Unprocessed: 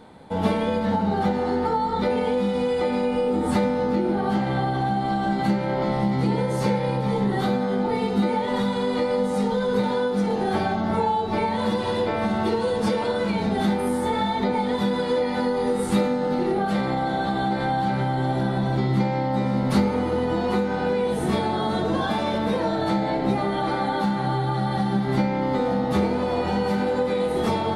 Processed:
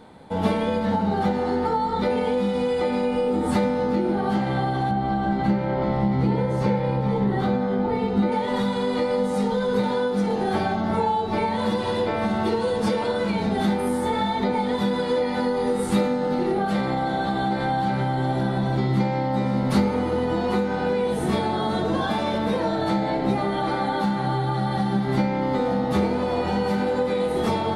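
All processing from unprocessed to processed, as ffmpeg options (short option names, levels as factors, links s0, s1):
-filter_complex "[0:a]asettb=1/sr,asplit=3[s0][s1][s2];[s0]atrim=end=4.914[s3];[s1]atrim=start=4.91:end=8.32,asetpts=PTS-STARTPTS,afade=t=in:d=0.004:c=qsin,afade=t=out:st=3.406:d=0.004:c=qsin,lowpass=f=2300:p=1,equalizer=f=68:w=1.4:g=9[s4];[s2]atrim=start=8.316[s5];[s3][s4]acrossfade=d=0.004:c1=hsin:c2=qsin[s6];[s6][s5]acrossfade=d=0.004:c1=qsin:c2=hsin"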